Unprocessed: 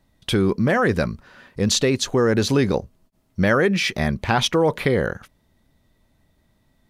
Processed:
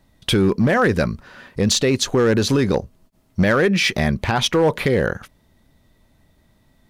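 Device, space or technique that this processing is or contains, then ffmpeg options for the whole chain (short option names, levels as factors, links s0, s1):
limiter into clipper: -af "alimiter=limit=0.251:level=0:latency=1:release=275,asoftclip=type=hard:threshold=0.178,volume=1.78"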